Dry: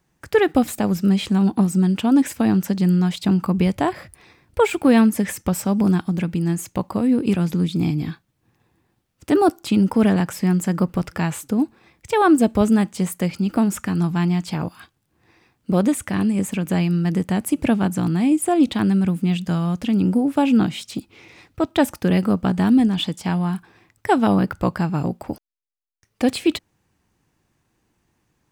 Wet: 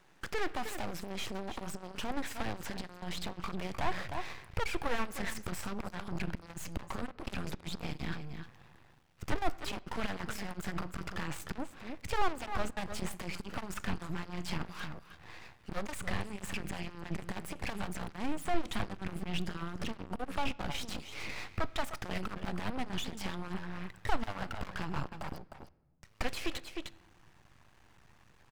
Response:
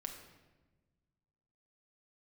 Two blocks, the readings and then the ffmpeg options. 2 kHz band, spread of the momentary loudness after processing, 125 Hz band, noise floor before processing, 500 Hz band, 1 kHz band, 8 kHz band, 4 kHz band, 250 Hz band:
−9.5 dB, 7 LU, −20.0 dB, −70 dBFS, −18.5 dB, −13.0 dB, −14.0 dB, −9.5 dB, −24.0 dB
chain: -filter_complex "[0:a]aecho=1:1:307:0.126,acrossover=split=500[link_01][link_02];[link_01]alimiter=limit=-17dB:level=0:latency=1:release=321[link_03];[link_03][link_02]amix=inputs=2:normalize=0,acompressor=threshold=-36dB:ratio=2,asplit=2[link_04][link_05];[link_05]highpass=frequency=720:poles=1,volume=27dB,asoftclip=type=tanh:threshold=-16dB[link_06];[link_04][link_06]amix=inputs=2:normalize=0,lowpass=frequency=2400:poles=1,volume=-6dB,asubboost=boost=10:cutoff=87,aeval=exprs='max(val(0),0)':channel_layout=same,asplit=2[link_07][link_08];[1:a]atrim=start_sample=2205,lowpass=5700[link_09];[link_08][link_09]afir=irnorm=-1:irlink=0,volume=-11.5dB[link_10];[link_07][link_10]amix=inputs=2:normalize=0,volume=-7.5dB"

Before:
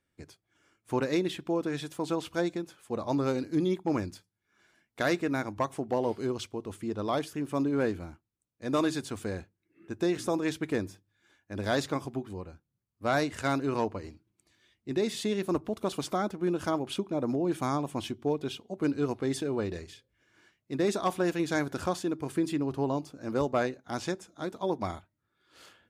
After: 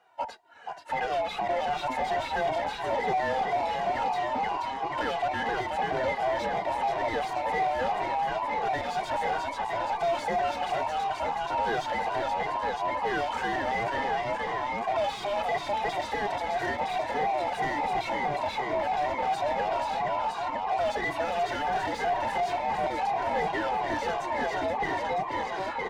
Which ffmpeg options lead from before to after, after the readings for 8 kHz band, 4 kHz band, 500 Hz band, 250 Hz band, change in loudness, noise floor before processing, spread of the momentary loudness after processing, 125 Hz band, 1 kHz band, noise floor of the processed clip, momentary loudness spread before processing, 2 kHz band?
−4.0 dB, +3.0 dB, +1.5 dB, −9.5 dB, +2.5 dB, −82 dBFS, 3 LU, −7.0 dB, +11.5 dB, −37 dBFS, 9 LU, +7.0 dB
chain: -filter_complex "[0:a]afftfilt=real='real(if(between(b,1,1008),(2*floor((b-1)/48)+1)*48-b,b),0)':imag='imag(if(between(b,1,1008),(2*floor((b-1)/48)+1)*48-b,b),0)*if(between(b,1,1008),-1,1)':win_size=2048:overlap=0.75,acrossover=split=240|1800[link_01][link_02][link_03];[link_01]acompressor=threshold=-43dB:ratio=4[link_04];[link_02]acompressor=threshold=-39dB:ratio=4[link_05];[link_03]acompressor=threshold=-39dB:ratio=4[link_06];[link_04][link_05][link_06]amix=inputs=3:normalize=0,asplit=8[link_07][link_08][link_09][link_10][link_11][link_12][link_13][link_14];[link_08]adelay=480,afreqshift=56,volume=-7dB[link_15];[link_09]adelay=960,afreqshift=112,volume=-11.7dB[link_16];[link_10]adelay=1440,afreqshift=168,volume=-16.5dB[link_17];[link_11]adelay=1920,afreqshift=224,volume=-21.2dB[link_18];[link_12]adelay=2400,afreqshift=280,volume=-25.9dB[link_19];[link_13]adelay=2880,afreqshift=336,volume=-30.7dB[link_20];[link_14]adelay=3360,afreqshift=392,volume=-35.4dB[link_21];[link_07][link_15][link_16][link_17][link_18][link_19][link_20][link_21]amix=inputs=8:normalize=0,dynaudnorm=framelen=560:gausssize=5:maxgain=5dB,asplit=2[link_22][link_23];[link_23]highpass=frequency=720:poles=1,volume=32dB,asoftclip=type=tanh:threshold=-16.5dB[link_24];[link_22][link_24]amix=inputs=2:normalize=0,lowpass=frequency=1400:poles=1,volume=-6dB,acrusher=bits=11:mix=0:aa=0.000001,lowpass=frequency=3000:poles=1,asplit=2[link_25][link_26];[link_26]adelay=2,afreqshift=-2.9[link_27];[link_25][link_27]amix=inputs=2:normalize=1"

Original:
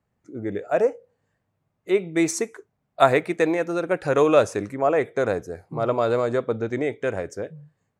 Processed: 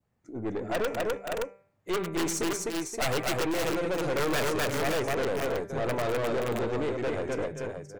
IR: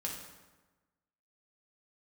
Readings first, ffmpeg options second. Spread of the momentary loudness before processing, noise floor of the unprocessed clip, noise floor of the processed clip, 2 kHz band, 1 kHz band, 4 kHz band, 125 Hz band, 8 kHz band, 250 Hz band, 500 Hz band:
13 LU, −76 dBFS, −70 dBFS, −3.0 dB, −6.5 dB, +3.0 dB, −3.5 dB, 0.0 dB, −5.5 dB, −7.5 dB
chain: -filter_complex "[0:a]adynamicequalizer=threshold=0.0126:dfrequency=1600:dqfactor=1.3:tfrequency=1600:tqfactor=1.3:attack=5:release=100:ratio=0.375:range=3:mode=cutabove:tftype=bell,aeval=exprs='(mod(3.76*val(0)+1,2)-1)/3.76':channel_layout=same,bandreject=frequency=196.4:width_type=h:width=4,bandreject=frequency=392.8:width_type=h:width=4,bandreject=frequency=589.2:width_type=h:width=4,bandreject=frequency=785.6:width_type=h:width=4,bandreject=frequency=982:width_type=h:width=4,bandreject=frequency=1178.4:width_type=h:width=4,bandreject=frequency=1374.8:width_type=h:width=4,bandreject=frequency=1571.2:width_type=h:width=4,bandreject=frequency=1767.6:width_type=h:width=4,bandreject=frequency=1964:width_type=h:width=4,bandreject=frequency=2160.4:width_type=h:width=4,bandreject=frequency=2356.8:width_type=h:width=4,bandreject=frequency=2553.2:width_type=h:width=4,asplit=2[link_01][link_02];[link_02]aecho=0:1:102|254|525|571:0.15|0.631|0.168|0.335[link_03];[link_01][link_03]amix=inputs=2:normalize=0,aeval=exprs='(tanh(20*val(0)+0.4)-tanh(0.4))/20':channel_layout=same"

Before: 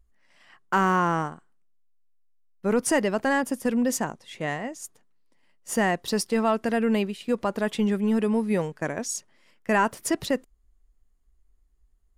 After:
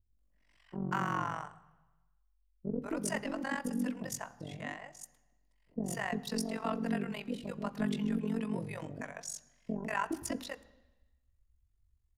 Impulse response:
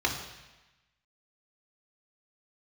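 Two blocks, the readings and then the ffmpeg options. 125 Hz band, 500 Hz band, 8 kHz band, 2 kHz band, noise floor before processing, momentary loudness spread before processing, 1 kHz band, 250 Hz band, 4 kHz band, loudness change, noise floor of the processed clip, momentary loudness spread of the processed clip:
−7.0 dB, −14.5 dB, −10.5 dB, −11.0 dB, −64 dBFS, 10 LU, −12.0 dB, −10.0 dB, −10.0 dB, −11.5 dB, −72 dBFS, 11 LU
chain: -filter_complex "[0:a]tremolo=f=46:d=0.919,acrossover=split=530[link_01][link_02];[link_02]adelay=190[link_03];[link_01][link_03]amix=inputs=2:normalize=0,asplit=2[link_04][link_05];[1:a]atrim=start_sample=2205,lowshelf=frequency=260:gain=11[link_06];[link_05][link_06]afir=irnorm=-1:irlink=0,volume=-22dB[link_07];[link_04][link_07]amix=inputs=2:normalize=0,volume=-7dB"

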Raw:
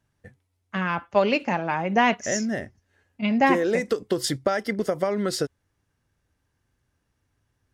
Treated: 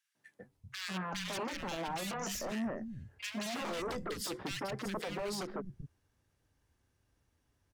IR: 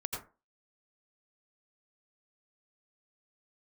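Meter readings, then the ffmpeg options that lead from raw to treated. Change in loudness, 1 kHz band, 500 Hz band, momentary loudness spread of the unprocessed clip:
−14.5 dB, −15.5 dB, −16.0 dB, 9 LU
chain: -filter_complex "[0:a]aeval=exprs='0.0631*(abs(mod(val(0)/0.0631+3,4)-2)-1)':channel_layout=same,acrossover=split=160|1600[link_01][link_02][link_03];[link_02]adelay=150[link_04];[link_01]adelay=390[link_05];[link_05][link_04][link_03]amix=inputs=3:normalize=0,alimiter=level_in=4.5dB:limit=-24dB:level=0:latency=1:release=57,volume=-4.5dB,volume=-1.5dB"

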